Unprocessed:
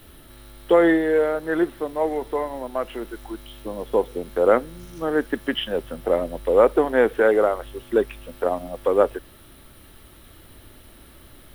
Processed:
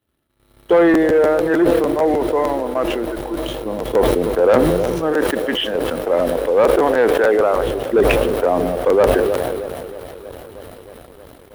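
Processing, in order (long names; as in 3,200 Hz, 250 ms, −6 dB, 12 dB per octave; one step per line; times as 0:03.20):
0:05.13–0:07.54: low-shelf EQ 330 Hz −9.5 dB
delay with a band-pass on its return 315 ms, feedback 81%, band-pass 420 Hz, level −18 dB
leveller curve on the samples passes 2
high-pass filter 56 Hz 12 dB per octave
high-shelf EQ 2,400 Hz −6 dB
noise gate −43 dBFS, range −21 dB
regular buffer underruns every 0.15 s, samples 512, repeat, from 0:00.93
level that may fall only so fast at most 23 dB per second
level −1.5 dB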